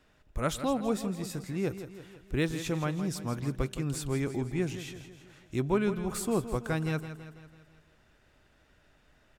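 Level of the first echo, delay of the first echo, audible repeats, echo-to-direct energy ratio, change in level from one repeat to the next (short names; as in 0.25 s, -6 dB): -11.5 dB, 0.165 s, 5, -10.0 dB, -5.5 dB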